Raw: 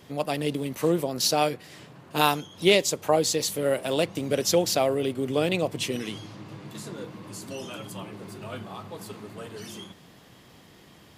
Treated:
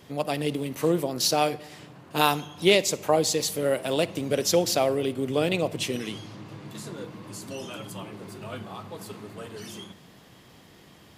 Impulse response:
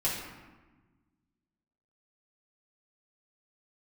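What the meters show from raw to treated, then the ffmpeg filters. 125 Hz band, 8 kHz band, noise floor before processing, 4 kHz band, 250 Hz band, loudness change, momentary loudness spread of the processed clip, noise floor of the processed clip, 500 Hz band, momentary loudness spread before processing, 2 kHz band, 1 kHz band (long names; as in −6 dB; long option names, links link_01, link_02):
0.0 dB, 0.0 dB, −53 dBFS, 0.0 dB, 0.0 dB, 0.0 dB, 18 LU, −53 dBFS, 0.0 dB, 18 LU, 0.0 dB, 0.0 dB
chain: -filter_complex "[0:a]asplit=2[link_01][link_02];[1:a]atrim=start_sample=2205,adelay=51[link_03];[link_02][link_03]afir=irnorm=-1:irlink=0,volume=-26dB[link_04];[link_01][link_04]amix=inputs=2:normalize=0"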